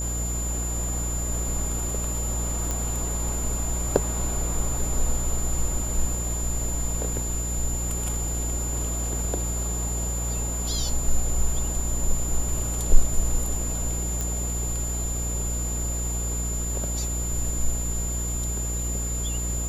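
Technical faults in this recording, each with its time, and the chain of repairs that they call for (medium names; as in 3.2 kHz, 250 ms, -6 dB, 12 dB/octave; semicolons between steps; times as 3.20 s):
buzz 60 Hz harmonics 12 -29 dBFS
whine 7.1 kHz -30 dBFS
2.71 s: pop
14.21 s: pop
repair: de-click; band-stop 7.1 kHz, Q 30; de-hum 60 Hz, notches 12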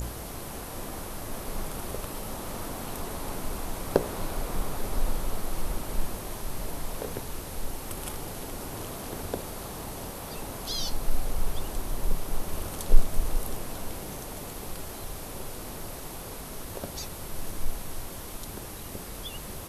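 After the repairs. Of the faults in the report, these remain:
nothing left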